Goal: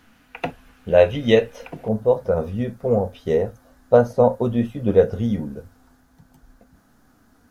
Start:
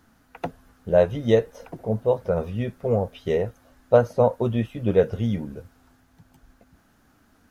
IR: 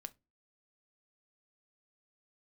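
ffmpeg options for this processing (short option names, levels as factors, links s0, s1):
-filter_complex "[0:a]asetnsamples=n=441:p=0,asendcmd='1.88 equalizer g -5.5',equalizer=f=2600:w=1.5:g=11[s0];[1:a]atrim=start_sample=2205,atrim=end_sample=3528[s1];[s0][s1]afir=irnorm=-1:irlink=0,volume=2.37"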